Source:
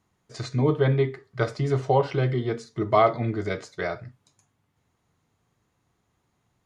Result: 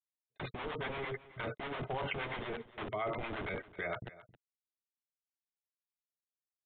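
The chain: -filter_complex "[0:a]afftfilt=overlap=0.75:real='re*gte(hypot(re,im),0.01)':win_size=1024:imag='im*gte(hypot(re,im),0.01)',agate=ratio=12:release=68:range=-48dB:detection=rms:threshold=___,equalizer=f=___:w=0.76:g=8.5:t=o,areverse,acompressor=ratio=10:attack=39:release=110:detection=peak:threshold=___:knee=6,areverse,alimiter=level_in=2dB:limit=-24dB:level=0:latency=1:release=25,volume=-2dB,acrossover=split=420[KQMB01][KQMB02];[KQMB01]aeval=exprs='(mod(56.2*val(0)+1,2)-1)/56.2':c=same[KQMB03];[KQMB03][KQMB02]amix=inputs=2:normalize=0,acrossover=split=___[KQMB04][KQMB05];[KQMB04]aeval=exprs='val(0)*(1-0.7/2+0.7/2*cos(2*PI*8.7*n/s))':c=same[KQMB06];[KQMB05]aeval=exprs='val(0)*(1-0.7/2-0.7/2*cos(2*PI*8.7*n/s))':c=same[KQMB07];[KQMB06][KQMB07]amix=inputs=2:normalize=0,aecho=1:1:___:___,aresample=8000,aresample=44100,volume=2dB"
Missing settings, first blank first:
-39dB, 2.4k, -32dB, 660, 268, 0.126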